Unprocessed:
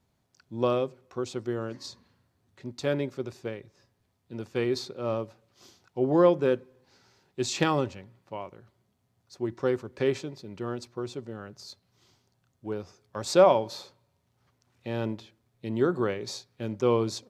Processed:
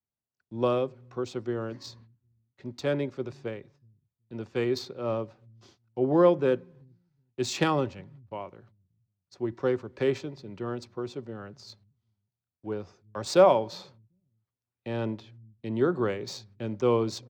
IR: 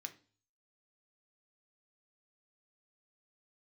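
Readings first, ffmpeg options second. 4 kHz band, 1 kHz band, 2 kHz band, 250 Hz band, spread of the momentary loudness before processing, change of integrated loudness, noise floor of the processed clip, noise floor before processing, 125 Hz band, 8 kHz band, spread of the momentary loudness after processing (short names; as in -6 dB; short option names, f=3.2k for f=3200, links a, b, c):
-1.0 dB, 0.0 dB, -0.5 dB, 0.0 dB, 21 LU, 0.0 dB, under -85 dBFS, -73 dBFS, 0.0 dB, -3.0 dB, 21 LU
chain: -filter_complex "[0:a]agate=range=-25dB:threshold=-56dB:ratio=16:detection=peak,acrossover=split=150|530|1400[a][b][c][d];[a]aecho=1:1:375|750:0.237|0.0379[e];[d]adynamicsmooth=sensitivity=7.5:basefreq=5.5k[f];[e][b][c][f]amix=inputs=4:normalize=0"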